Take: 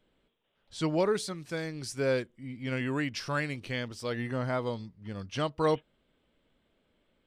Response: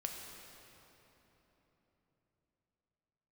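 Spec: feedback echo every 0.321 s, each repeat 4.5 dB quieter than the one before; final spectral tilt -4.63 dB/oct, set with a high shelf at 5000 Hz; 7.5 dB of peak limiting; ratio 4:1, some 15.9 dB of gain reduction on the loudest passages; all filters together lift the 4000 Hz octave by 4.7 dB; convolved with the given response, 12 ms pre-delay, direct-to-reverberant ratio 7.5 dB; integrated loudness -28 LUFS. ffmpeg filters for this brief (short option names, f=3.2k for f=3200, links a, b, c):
-filter_complex "[0:a]equalizer=f=4k:t=o:g=8.5,highshelf=f=5k:g=-5,acompressor=threshold=-42dB:ratio=4,alimiter=level_in=12.5dB:limit=-24dB:level=0:latency=1,volume=-12.5dB,aecho=1:1:321|642|963|1284|1605|1926|2247|2568|2889:0.596|0.357|0.214|0.129|0.0772|0.0463|0.0278|0.0167|0.01,asplit=2[a][b];[1:a]atrim=start_sample=2205,adelay=12[c];[b][c]afir=irnorm=-1:irlink=0,volume=-7dB[d];[a][d]amix=inputs=2:normalize=0,volume=16.5dB"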